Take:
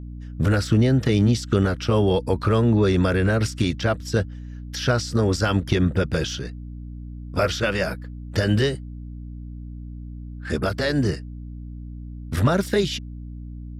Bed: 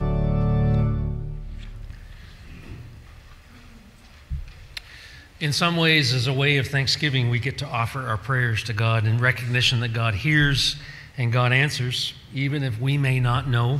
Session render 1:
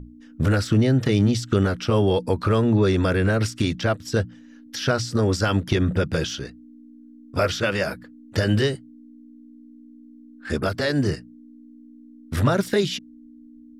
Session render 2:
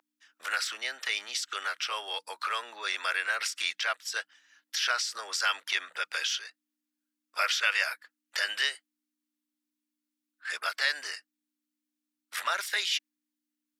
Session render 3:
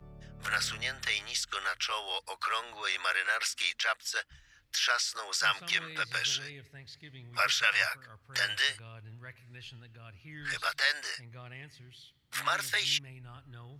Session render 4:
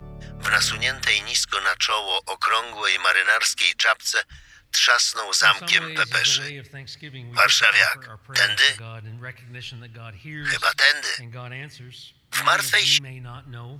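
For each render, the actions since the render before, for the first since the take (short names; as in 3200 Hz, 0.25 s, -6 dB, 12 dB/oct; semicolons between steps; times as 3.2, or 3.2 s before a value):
notches 60/120/180 Hz
Bessel high-pass 1400 Hz, order 4; dynamic EQ 2200 Hz, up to +5 dB, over -43 dBFS, Q 1.8
add bed -28 dB
gain +11.5 dB; limiter -2 dBFS, peak gain reduction 2.5 dB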